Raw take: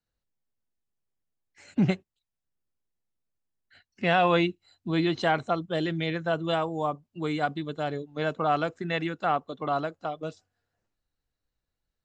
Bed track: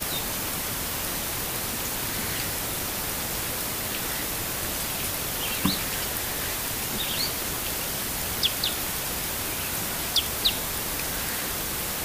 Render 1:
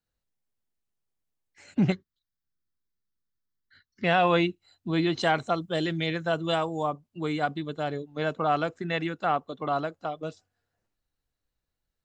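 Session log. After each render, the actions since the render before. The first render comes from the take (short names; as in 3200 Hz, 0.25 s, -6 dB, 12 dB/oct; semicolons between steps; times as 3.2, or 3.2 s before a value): 1.92–4.04 fixed phaser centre 2600 Hz, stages 6; 5.17–6.83 high shelf 5300 Hz +10 dB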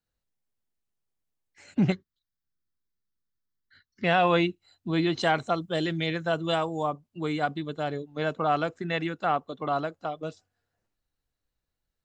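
nothing audible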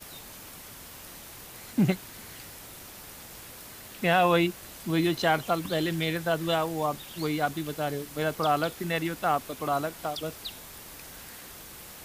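add bed track -15.5 dB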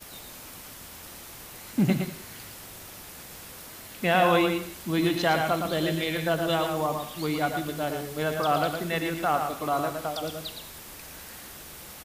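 on a send: echo 0.114 s -6 dB; on the sum: non-linear reverb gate 0.22 s flat, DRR 10 dB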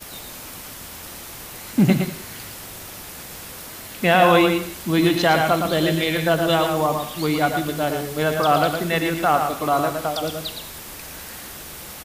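gain +7 dB; limiter -3 dBFS, peak gain reduction 2 dB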